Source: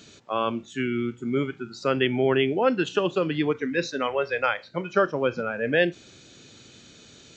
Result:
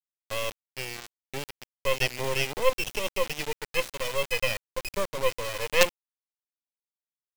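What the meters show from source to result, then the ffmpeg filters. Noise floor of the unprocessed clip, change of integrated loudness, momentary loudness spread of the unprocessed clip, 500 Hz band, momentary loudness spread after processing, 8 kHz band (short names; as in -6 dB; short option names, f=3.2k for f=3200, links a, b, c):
-51 dBFS, -3.5 dB, 7 LU, -5.0 dB, 12 LU, n/a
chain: -filter_complex "[0:a]equalizer=f=4k:t=o:w=0.87:g=-13,asplit=2[a][b];[b]aeval=exprs='sgn(val(0))*max(abs(val(0))-0.00562,0)':c=same,volume=-12dB[c];[a][c]amix=inputs=2:normalize=0,aexciter=amount=10.2:drive=7.2:freq=2.4k,asplit=3[d][e][f];[d]bandpass=f=530:t=q:w=8,volume=0dB[g];[e]bandpass=f=1.84k:t=q:w=8,volume=-6dB[h];[f]bandpass=f=2.48k:t=q:w=8,volume=-9dB[i];[g][h][i]amix=inputs=3:normalize=0,acrusher=bits=3:dc=4:mix=0:aa=0.000001,volume=3.5dB"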